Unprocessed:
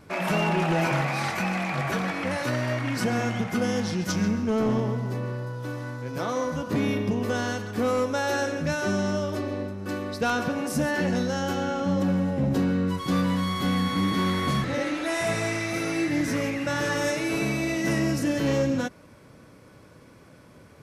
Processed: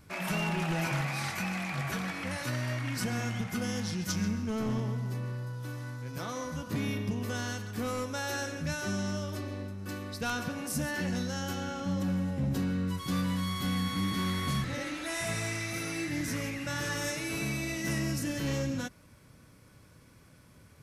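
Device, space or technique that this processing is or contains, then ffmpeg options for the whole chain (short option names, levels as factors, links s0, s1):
smiley-face EQ: -af "lowshelf=f=110:g=6,equalizer=f=490:t=o:w=2.3:g=-7,highshelf=f=7600:g=8,volume=0.562"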